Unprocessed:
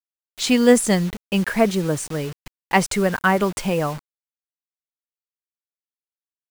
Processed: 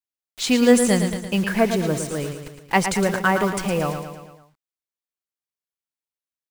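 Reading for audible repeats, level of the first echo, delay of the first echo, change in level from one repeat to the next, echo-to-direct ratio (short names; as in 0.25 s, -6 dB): 5, -8.0 dB, 0.112 s, -5.0 dB, -6.5 dB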